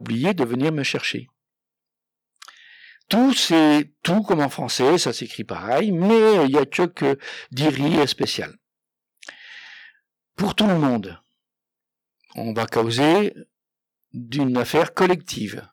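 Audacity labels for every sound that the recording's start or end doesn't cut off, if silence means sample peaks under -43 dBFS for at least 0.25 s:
2.420000	8.540000	sound
9.220000	9.900000	sound
10.390000	11.170000	sound
12.300000	13.430000	sound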